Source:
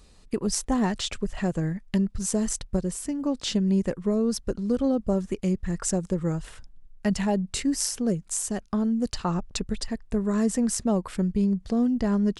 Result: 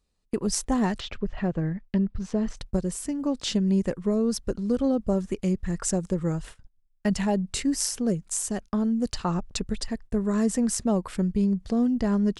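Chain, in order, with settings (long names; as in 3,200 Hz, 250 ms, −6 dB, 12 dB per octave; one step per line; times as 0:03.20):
noise gate −40 dBFS, range −21 dB
0:01.00–0:02.57: high-frequency loss of the air 240 metres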